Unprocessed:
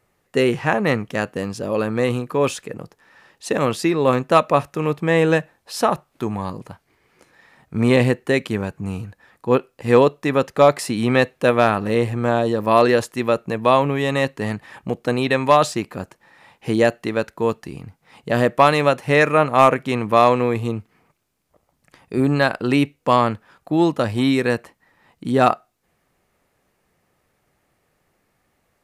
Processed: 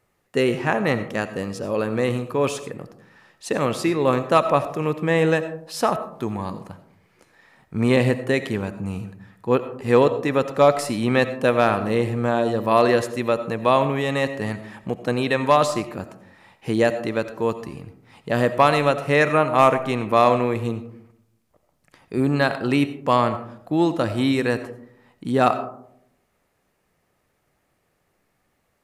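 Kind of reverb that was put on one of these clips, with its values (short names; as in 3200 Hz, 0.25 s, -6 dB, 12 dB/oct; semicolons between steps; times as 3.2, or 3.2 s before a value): digital reverb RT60 0.72 s, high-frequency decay 0.3×, pre-delay 45 ms, DRR 11.5 dB; gain -2.5 dB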